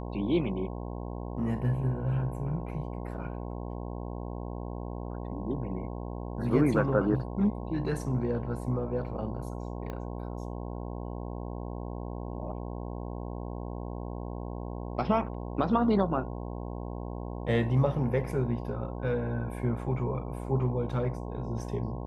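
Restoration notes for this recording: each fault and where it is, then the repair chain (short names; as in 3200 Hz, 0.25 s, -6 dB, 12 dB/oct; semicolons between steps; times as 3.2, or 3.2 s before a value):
buzz 60 Hz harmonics 18 -37 dBFS
9.9 pop -25 dBFS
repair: de-click; de-hum 60 Hz, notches 18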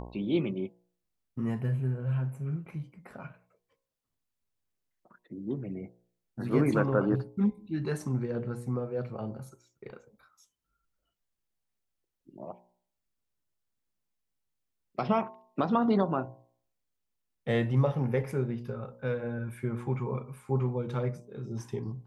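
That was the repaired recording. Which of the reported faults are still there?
9.9 pop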